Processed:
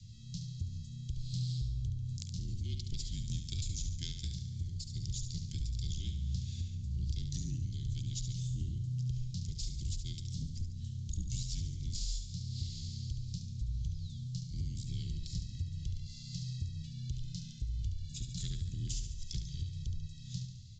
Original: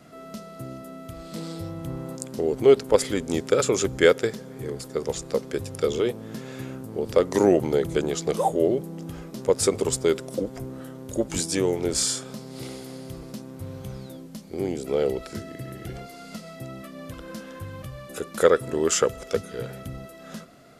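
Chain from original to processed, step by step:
stylus tracing distortion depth 0.13 ms
elliptic band-stop filter 160–3,900 Hz, stop band 70 dB
low-shelf EQ 230 Hz +8.5 dB
downward compressor, threshold −35 dBFS, peak gain reduction 16 dB
frequency shifter −40 Hz
on a send: repeating echo 71 ms, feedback 54%, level −8 dB
on the sum: downsampling to 16,000 Hz
level +1 dB

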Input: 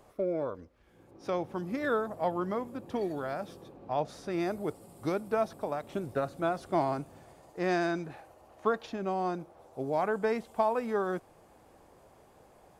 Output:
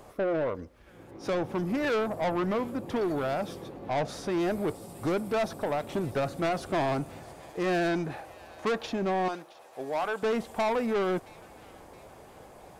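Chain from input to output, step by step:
0:09.28–0:10.23: high-pass filter 1,100 Hz 6 dB per octave
soft clipping −32.5 dBFS, distortion −8 dB
on a send: delay with a high-pass on its return 669 ms, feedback 53%, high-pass 1,800 Hz, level −18 dB
on the sum: level +8.5 dB

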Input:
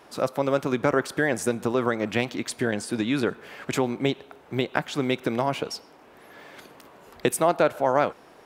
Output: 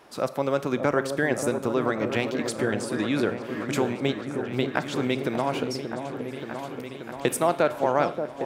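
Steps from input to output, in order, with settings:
echo whose low-pass opens from repeat to repeat 580 ms, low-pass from 750 Hz, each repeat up 1 octave, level −6 dB
four-comb reverb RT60 0.56 s, combs from 28 ms, DRR 15.5 dB
level −1.5 dB

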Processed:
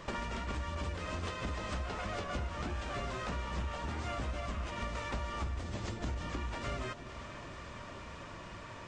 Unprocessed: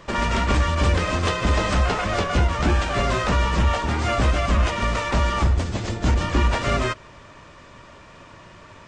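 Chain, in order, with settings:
downward compressor 8 to 1, threshold −33 dBFS, peak gain reduction 17.5 dB
on a send: delay that swaps between a low-pass and a high-pass 225 ms, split 920 Hz, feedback 87%, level −12 dB
on the sum: level −3 dB

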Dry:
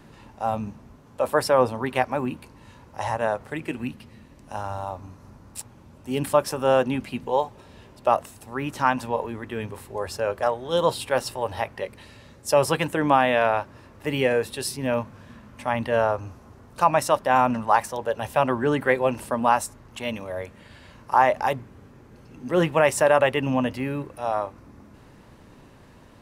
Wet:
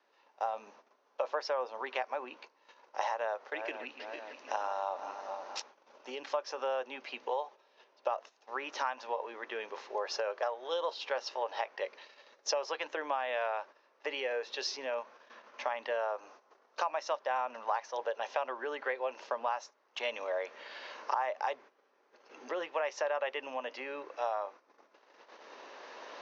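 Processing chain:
0:03.21–0:05.59: feedback delay that plays each chunk backwards 238 ms, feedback 62%, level −13.5 dB
camcorder AGC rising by 6.8 dB per second
Butterworth low-pass 6,400 Hz 96 dB per octave
downward compressor 6 to 1, threshold −25 dBFS, peak gain reduction 12.5 dB
noise gate −42 dBFS, range −13 dB
high-pass filter 460 Hz 24 dB per octave
level −4 dB

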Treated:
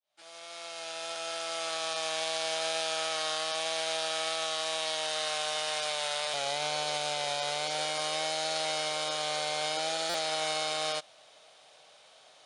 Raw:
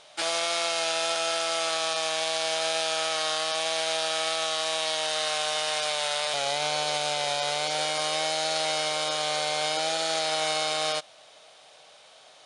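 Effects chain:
fade in at the beginning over 2.16 s
buffer that repeats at 0:10.09, samples 256, times 8
level −4.5 dB

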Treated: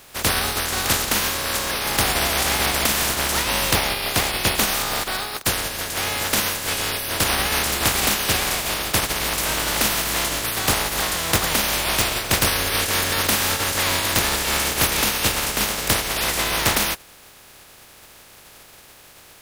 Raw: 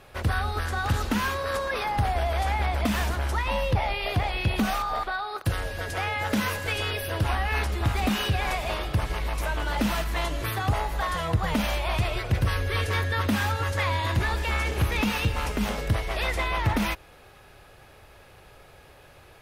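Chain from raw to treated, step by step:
compressing power law on the bin magnitudes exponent 0.3
level +4.5 dB

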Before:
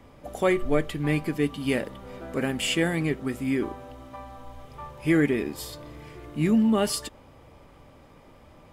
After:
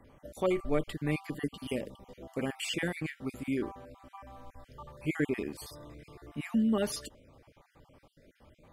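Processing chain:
time-frequency cells dropped at random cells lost 35%
0:01.68–0:02.39: parametric band 1,500 Hz −15 dB 0.65 octaves
level −6 dB

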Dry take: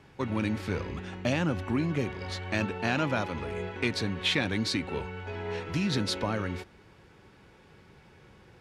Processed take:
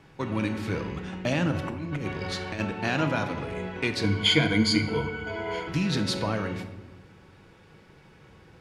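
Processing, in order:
0:01.51–0:02.60: compressor whose output falls as the input rises −32 dBFS, ratio −0.5
0:04.03–0:05.68: EQ curve with evenly spaced ripples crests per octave 1.8, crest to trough 18 dB
rectangular room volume 680 cubic metres, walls mixed, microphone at 0.64 metres
level +1 dB

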